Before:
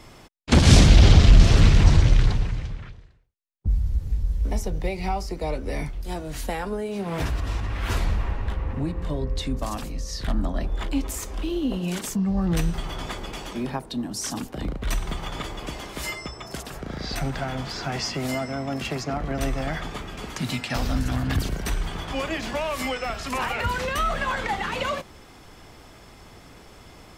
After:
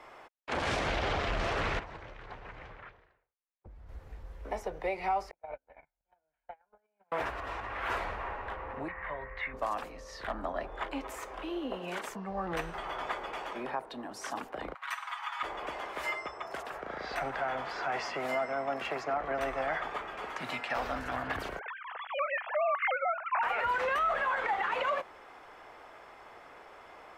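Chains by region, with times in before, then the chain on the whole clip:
0:01.79–0:03.89: downward compressor 16 to 1, threshold −25 dBFS + high-shelf EQ 4,900 Hz −7 dB
0:05.31–0:07.12: noise gate −24 dBFS, range −45 dB + low-pass filter 2,900 Hz 24 dB per octave + comb filter 1.3 ms, depth 59%
0:08.88–0:09.54: low-pass with resonance 2,000 Hz, resonance Q 5.8 + parametric band 320 Hz −13.5 dB 1.5 octaves
0:14.74–0:15.43: Butterworth high-pass 940 Hz + comb filter 7.2 ms, depth 57%
0:21.59–0:23.43: three sine waves on the formant tracks + band-pass filter 690–2,700 Hz + noise gate with hold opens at −35 dBFS, closes at −42 dBFS
whole clip: three-way crossover with the lows and the highs turned down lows −24 dB, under 460 Hz, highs −19 dB, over 2,300 Hz; brickwall limiter −24.5 dBFS; level +2 dB

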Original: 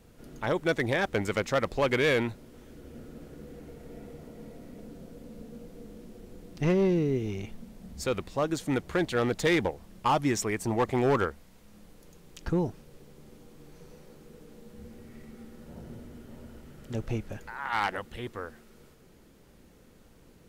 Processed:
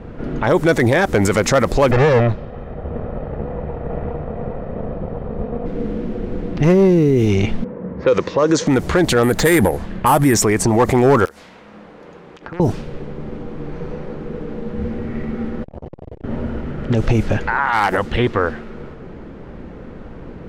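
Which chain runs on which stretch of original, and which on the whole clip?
0:01.91–0:05.66: lower of the sound and its delayed copy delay 1.6 ms + head-to-tape spacing loss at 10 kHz 26 dB
0:07.64–0:08.67: low-pass that shuts in the quiet parts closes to 1,300 Hz, open at −23.5 dBFS + loudspeaker in its box 160–6,700 Hz, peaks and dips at 220 Hz −7 dB, 500 Hz +9 dB, 730 Hz −9 dB, 1,000 Hz +5 dB, 1,800 Hz +3 dB, 6,100 Hz +6 dB + one half of a high-frequency compander decoder only
0:09.23–0:10.34: running median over 3 samples + parametric band 1,700 Hz +5.5 dB 0.39 octaves + bad sample-rate conversion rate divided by 4×, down filtered, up hold
0:11.25–0:12.60: high-pass filter 610 Hz 6 dB per octave + wrap-around overflow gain 25.5 dB + downward compressor 16 to 1, threshold −50 dBFS
0:15.63–0:16.24: phaser with its sweep stopped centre 530 Hz, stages 4 + saturating transformer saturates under 440 Hz
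whole clip: low-pass that shuts in the quiet parts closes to 1,500 Hz, open at −25 dBFS; dynamic equaliser 3,100 Hz, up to −6 dB, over −46 dBFS, Q 0.99; boost into a limiter +28.5 dB; level −5.5 dB

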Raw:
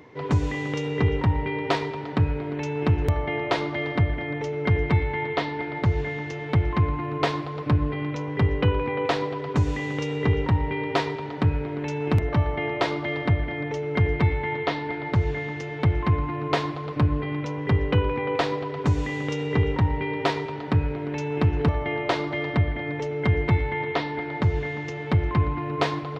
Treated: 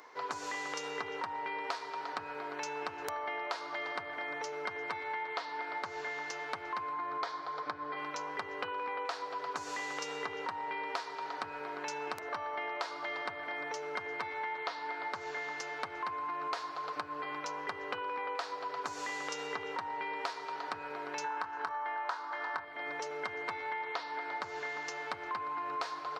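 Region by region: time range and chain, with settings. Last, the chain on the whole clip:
0:06.93–0:07.97: low-pass filter 5,000 Hz + notch filter 2,700 Hz, Q 5.5
0:21.24–0:22.65: flat-topped bell 1,200 Hz +10 dB 1.3 octaves + notch filter 1,200 Hz, Q 19 + double-tracking delay 24 ms −9 dB
whole clip: high-pass filter 1,100 Hz 12 dB per octave; flat-topped bell 2,600 Hz −9 dB 1.2 octaves; downward compressor 12 to 1, threshold −39 dBFS; level +5 dB

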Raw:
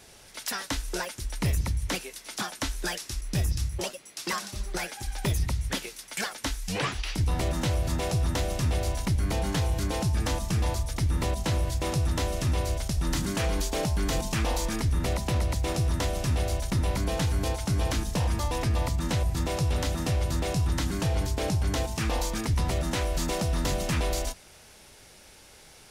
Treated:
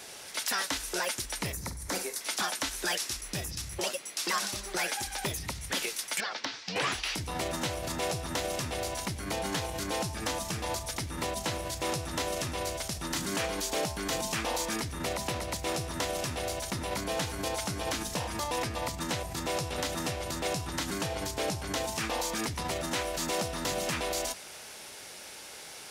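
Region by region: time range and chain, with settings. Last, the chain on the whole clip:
0:01.52–0:02.21: parametric band 2,900 Hz −12 dB 0.79 octaves + flutter between parallel walls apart 8.1 metres, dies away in 0.22 s
0:06.20–0:06.76: elliptic band-pass filter 120–4,900 Hz + downward compressor 4 to 1, threshold −37 dBFS + hard clipping −27.5 dBFS
whole clip: brickwall limiter −27.5 dBFS; high-pass filter 420 Hz 6 dB per octave; level +7.5 dB

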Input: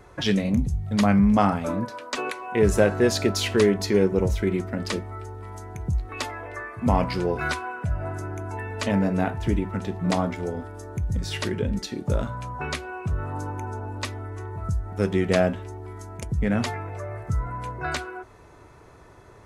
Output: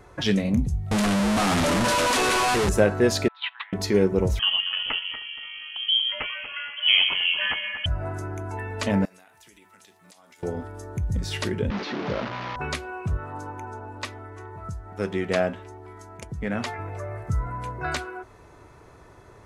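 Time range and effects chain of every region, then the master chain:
0:00.91–0:02.69: sign of each sample alone + low-pass filter 11,000 Hz 24 dB per octave
0:03.28–0:03.73: Chebyshev band-pass filter 820–3,800 Hz, order 5 + noise gate −31 dBFS, range −13 dB
0:04.39–0:07.86: delay that swaps between a low-pass and a high-pass 118 ms, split 840 Hz, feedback 54%, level −6 dB + voice inversion scrambler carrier 3,200 Hz
0:09.05–0:10.43: first difference + downward compressor 12 to 1, threshold −48 dBFS
0:11.70–0:12.56: linear delta modulator 32 kbit/s, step −23.5 dBFS + band-pass filter 180–3,100 Hz
0:13.17–0:16.79: low-pass filter 1,900 Hz 6 dB per octave + spectral tilt +2.5 dB per octave
whole clip: no processing

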